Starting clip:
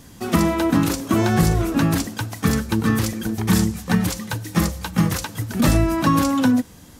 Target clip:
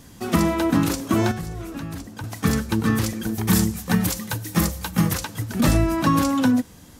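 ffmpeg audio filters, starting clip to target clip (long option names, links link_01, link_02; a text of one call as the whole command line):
ffmpeg -i in.wav -filter_complex "[0:a]asettb=1/sr,asplit=3[link_01][link_02][link_03];[link_01]atrim=end=1.314[link_04];[link_02]atrim=start=1.31:end=2.24,asetpts=PTS-STARTPTS,afade=type=in:duration=0.004:curve=qsin,afade=type=out:start_time=0.926:duration=0.004:curve=qsin,acrossover=split=87|1500[link_05][link_06][link_07];[link_05]acompressor=threshold=-36dB:ratio=4[link_08];[link_06]acompressor=threshold=-32dB:ratio=4[link_09];[link_07]acompressor=threshold=-43dB:ratio=4[link_10];[link_08][link_09][link_10]amix=inputs=3:normalize=0[link_11];[link_03]atrim=start=2.236[link_12];[link_04][link_11]acrossfade=duration=0.004:curve1=hsin:curve2=qsin[link_13];[link_13][link_12]acrossfade=duration=0.004:curve1=qsin:curve2=hsin,asettb=1/sr,asplit=3[link_14][link_15][link_16];[link_14]atrim=end=3.274[link_17];[link_15]atrim=start=3.27:end=5.14,asetpts=PTS-STARTPTS,afade=type=in:duration=0.004:curve=qsin,afade=type=out:start_time=1.866:duration=0.004:curve=qsin,highshelf=frequency=11000:gain=11[link_18];[link_16]atrim=start=5.136[link_19];[link_17][link_18]acrossfade=duration=0.004:curve1=hsin:curve2=qsin[link_20];[link_20][link_19]acrossfade=duration=0.004:curve1=qsin:curve2=hsin,volume=-1.5dB" out.wav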